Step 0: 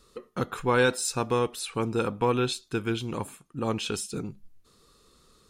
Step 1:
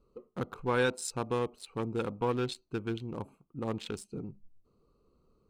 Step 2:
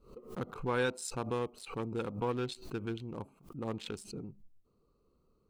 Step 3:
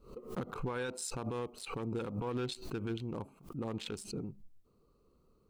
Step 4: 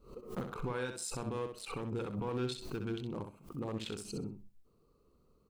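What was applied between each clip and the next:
local Wiener filter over 25 samples; trim -5.5 dB
swell ahead of each attack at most 120 dB/s; trim -3.5 dB
peak limiter -31 dBFS, peak gain reduction 11 dB; trim +3 dB
feedback delay 64 ms, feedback 19%, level -7 dB; trim -1 dB

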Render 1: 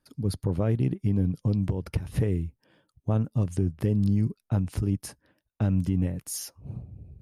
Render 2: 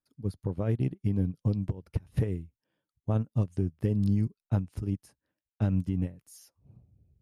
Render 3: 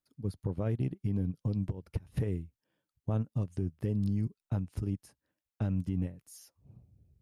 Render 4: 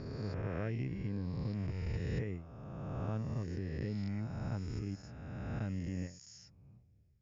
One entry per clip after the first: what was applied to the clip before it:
upward expansion 2.5:1, over -33 dBFS
peak limiter -23 dBFS, peak gain reduction 7 dB
reverse spectral sustain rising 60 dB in 2.27 s; rippled Chebyshev low-pass 7.1 kHz, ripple 9 dB; trim +1 dB

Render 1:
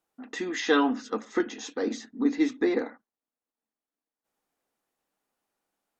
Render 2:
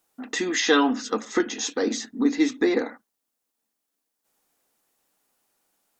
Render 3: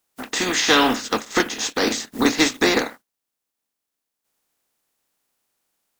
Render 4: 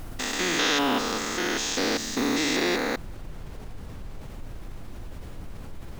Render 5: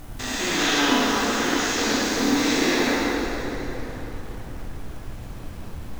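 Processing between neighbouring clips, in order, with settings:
treble shelf 4 kHz +9.5 dB; in parallel at -2 dB: compression, threshold -30 dBFS, peak gain reduction 13 dB; on the sum: trim +1 dB
spectral contrast reduction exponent 0.51; waveshaping leveller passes 1
spectrogram pixelated in time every 200 ms; added noise brown -45 dBFS; level flattener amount 50%; trim -4 dB
in parallel at -5 dB: small samples zeroed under -35 dBFS; on the sum: plate-style reverb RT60 4.1 s, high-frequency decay 0.65×, DRR -7 dB; trim -7.5 dB

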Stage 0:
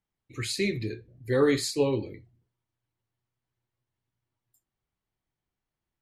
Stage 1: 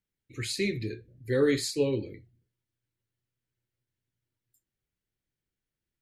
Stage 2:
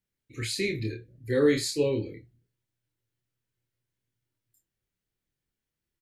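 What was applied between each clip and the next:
high-order bell 900 Hz -9 dB 1.1 oct; trim -1.5 dB
doubling 27 ms -4 dB

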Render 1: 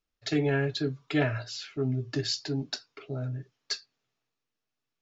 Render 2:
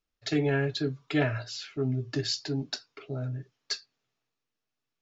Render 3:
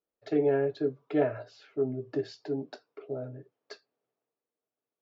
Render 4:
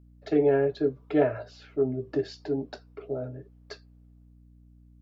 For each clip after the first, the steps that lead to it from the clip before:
no audible change
band-pass filter 500 Hz, Q 1.7; trim +5.5 dB
hum 60 Hz, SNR 25 dB; trim +3.5 dB

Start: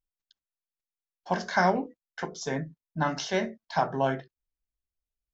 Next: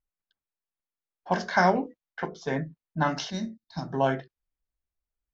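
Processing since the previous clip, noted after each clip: level-controlled noise filter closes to 1.8 kHz, open at -21.5 dBFS; time-frequency box 3.30–3.93 s, 360–3600 Hz -17 dB; trim +2 dB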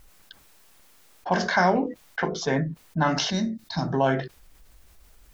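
level flattener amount 50%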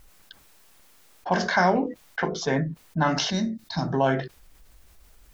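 no audible change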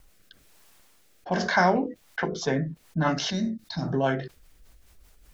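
rotary cabinet horn 1.1 Hz, later 5 Hz, at 1.73 s

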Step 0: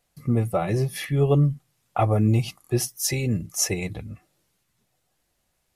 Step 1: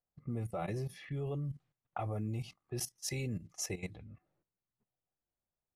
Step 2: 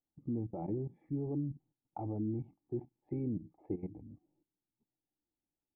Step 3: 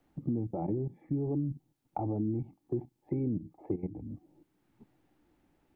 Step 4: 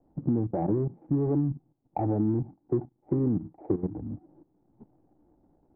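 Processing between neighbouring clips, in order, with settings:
level held to a coarse grid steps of 14 dB; level-controlled noise filter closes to 1.2 kHz, open at -25.5 dBFS; trim -8.5 dB
cascade formant filter u; trim +11.5 dB
three bands compressed up and down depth 70%; trim +4.5 dB
median filter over 41 samples; resonant low-pass 820 Hz, resonance Q 1.7; trim +5.5 dB

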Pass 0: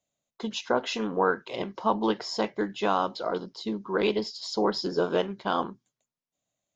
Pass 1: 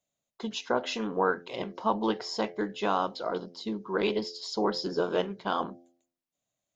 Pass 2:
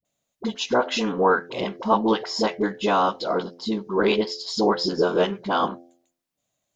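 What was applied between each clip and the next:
de-hum 86.43 Hz, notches 9; trim -2 dB
phase dispersion highs, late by 50 ms, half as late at 490 Hz; trim +7.5 dB

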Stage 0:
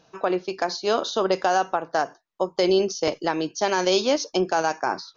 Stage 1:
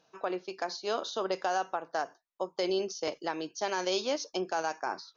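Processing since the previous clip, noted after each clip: bass shelf 180 Hz -11 dB; trim -8.5 dB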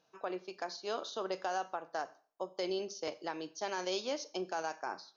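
Schroeder reverb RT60 0.45 s, combs from 29 ms, DRR 17 dB; trim -5.5 dB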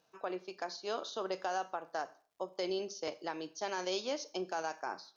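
crackle 140 per s -66 dBFS

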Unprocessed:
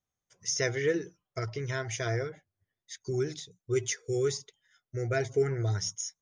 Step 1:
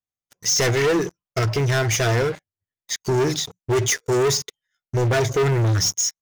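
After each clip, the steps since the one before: waveshaping leveller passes 5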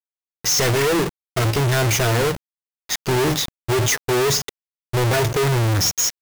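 square wave that keeps the level; bit crusher 5-bit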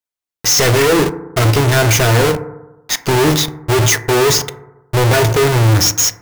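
FDN reverb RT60 1 s, low-frequency decay 1×, high-frequency decay 0.25×, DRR 10.5 dB; trim +6 dB

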